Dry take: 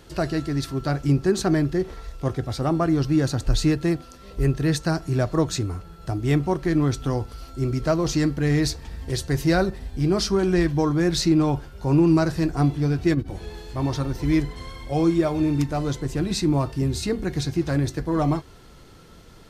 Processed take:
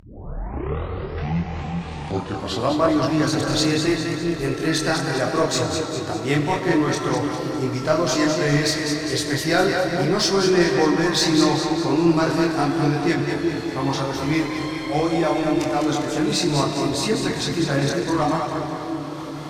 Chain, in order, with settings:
turntable start at the beginning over 2.98 s
meter weighting curve A
on a send: echo with a time of its own for lows and highs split 450 Hz, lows 379 ms, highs 202 ms, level −6 dB
on the sum: comb and all-pass reverb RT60 4.5 s, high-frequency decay 0.75×, pre-delay 5 ms, DRR 7 dB
in parallel at −4 dB: soft clipping −23 dBFS, distortion −12 dB
on the sum: multi-voice chorus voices 2, 0.7 Hz, delay 26 ms, depth 3.2 ms
upward compression, threshold −31 dBFS
low-shelf EQ 140 Hz +9.5 dB
hum removal 314.2 Hz, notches 31
level +5 dB

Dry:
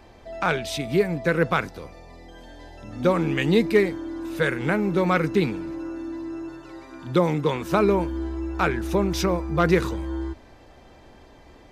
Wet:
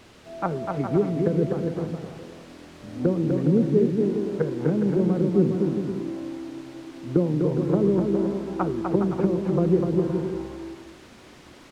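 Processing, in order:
low-pass that shuts in the quiet parts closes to 310 Hz, open at −16 dBFS
high-pass filter 140 Hz 12 dB per octave
treble cut that deepens with the level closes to 330 Hz, closed at −20 dBFS
in parallel at −7 dB: bit-depth reduction 6 bits, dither triangular
on the sum: head-to-tape spacing loss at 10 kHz 22 dB
bouncing-ball delay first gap 250 ms, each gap 0.65×, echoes 5
on a send at −16.5 dB: convolution reverb RT60 1.4 s, pre-delay 3 ms

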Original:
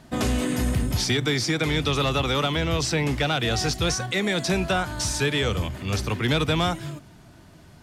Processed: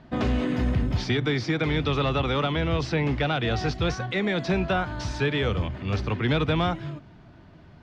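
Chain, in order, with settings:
high-frequency loss of the air 240 metres

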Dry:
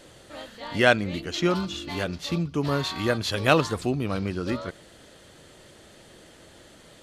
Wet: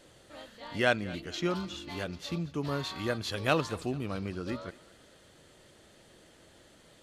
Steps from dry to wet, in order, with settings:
feedback echo with a high-pass in the loop 222 ms, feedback 46%, level −19.5 dB
level −7.5 dB

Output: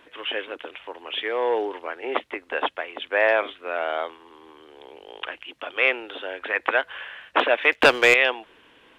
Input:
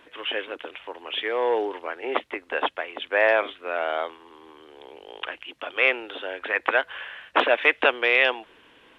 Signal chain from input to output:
0:07.72–0:08.14: leveller curve on the samples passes 2

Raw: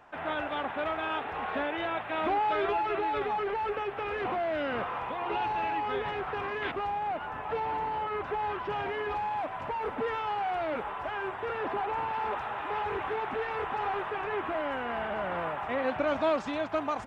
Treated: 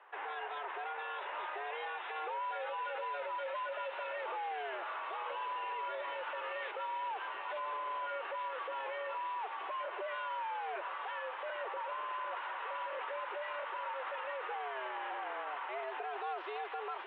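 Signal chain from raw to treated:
delay with a high-pass on its return 873 ms, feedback 77%, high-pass 2,800 Hz, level −4 dB
brickwall limiter −29 dBFS, peak gain reduction 10.5 dB
single-sideband voice off tune +140 Hz 230–3,400 Hz
level −3.5 dB

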